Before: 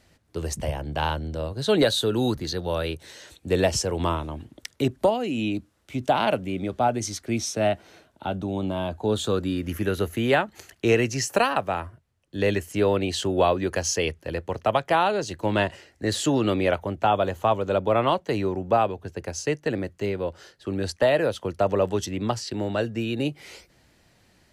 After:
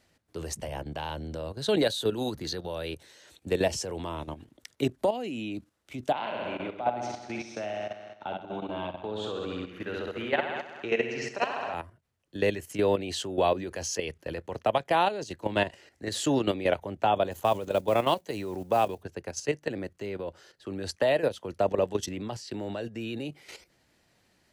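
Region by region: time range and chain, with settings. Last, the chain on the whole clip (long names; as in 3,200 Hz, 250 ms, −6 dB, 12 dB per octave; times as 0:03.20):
0:06.12–0:11.74: low-pass filter 2,800 Hz + low-shelf EQ 450 Hz −11 dB + flutter between parallel walls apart 11.3 metres, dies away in 1.2 s
0:17.31–0:19.03: high-shelf EQ 6,600 Hz +12 dB + noise that follows the level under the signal 29 dB
whole clip: dynamic equaliser 1,300 Hz, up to −6 dB, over −41 dBFS, Q 2.9; output level in coarse steps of 11 dB; low-shelf EQ 120 Hz −7.5 dB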